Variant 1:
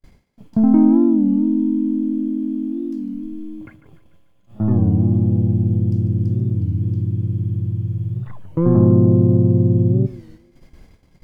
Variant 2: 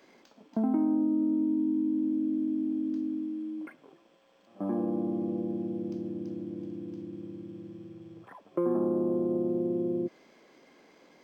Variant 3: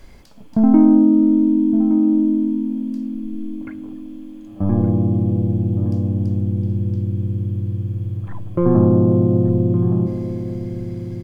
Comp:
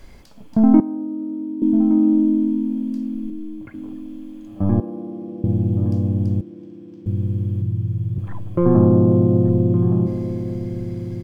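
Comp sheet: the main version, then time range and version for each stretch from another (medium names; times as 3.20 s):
3
0.80–1.62 s: from 2
3.30–3.74 s: from 1
4.80–5.44 s: from 2
6.41–7.06 s: from 2
7.62–8.18 s: from 1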